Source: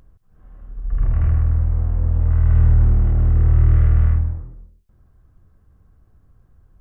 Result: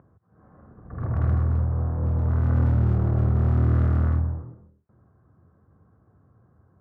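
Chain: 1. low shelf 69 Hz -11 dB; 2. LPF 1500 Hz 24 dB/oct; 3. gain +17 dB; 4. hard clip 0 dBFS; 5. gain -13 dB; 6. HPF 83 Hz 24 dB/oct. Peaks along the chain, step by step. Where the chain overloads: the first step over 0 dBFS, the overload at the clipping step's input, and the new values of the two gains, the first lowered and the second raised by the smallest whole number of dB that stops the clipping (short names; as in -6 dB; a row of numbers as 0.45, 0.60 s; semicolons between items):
-10.0, -10.0, +7.0, 0.0, -13.0, -11.5 dBFS; step 3, 7.0 dB; step 3 +10 dB, step 5 -6 dB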